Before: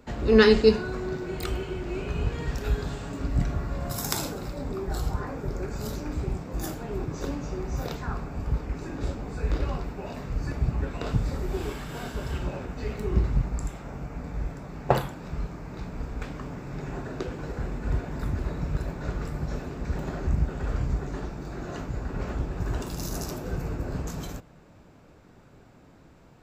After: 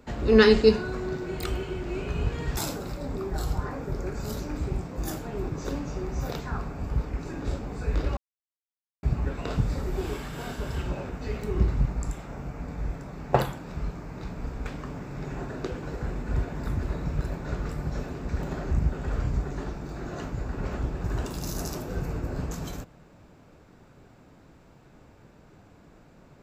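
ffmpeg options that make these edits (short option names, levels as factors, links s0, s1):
-filter_complex "[0:a]asplit=4[s0][s1][s2][s3];[s0]atrim=end=2.572[s4];[s1]atrim=start=4.128:end=9.73,asetpts=PTS-STARTPTS,afade=t=out:st=5.598:d=0.004:c=hsin[s5];[s2]atrim=start=9.73:end=10.59,asetpts=PTS-STARTPTS,volume=0[s6];[s3]atrim=start=10.59,asetpts=PTS-STARTPTS,afade=t=in:d=0.004:c=hsin[s7];[s5][s6][s7]concat=n=3:v=0:a=1[s8];[s4][s8]acrossfade=d=0.004:c1=hsin:c2=hsin"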